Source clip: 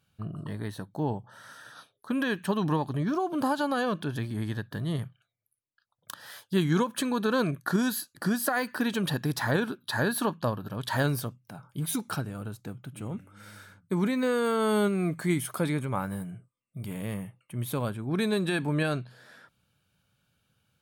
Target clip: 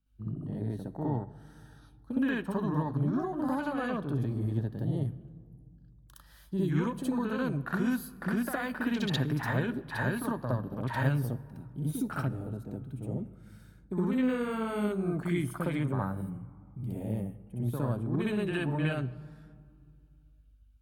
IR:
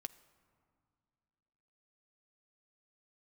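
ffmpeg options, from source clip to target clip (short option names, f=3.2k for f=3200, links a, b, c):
-filter_complex "[0:a]aeval=exprs='val(0)+0.00141*(sin(2*PI*50*n/s)+sin(2*PI*2*50*n/s)/2+sin(2*PI*3*50*n/s)/3+sin(2*PI*4*50*n/s)/4+sin(2*PI*5*50*n/s)/5)':c=same,afwtdn=0.0158,acrossover=split=180|3000[a][b][c];[b]acompressor=threshold=-32dB:ratio=6[d];[a][d][c]amix=inputs=3:normalize=0,asplit=2[e][f];[1:a]atrim=start_sample=2205,highshelf=f=11k:g=7.5,adelay=63[g];[f][g]afir=irnorm=-1:irlink=0,volume=8.5dB[h];[e][h]amix=inputs=2:normalize=0,volume=-4dB"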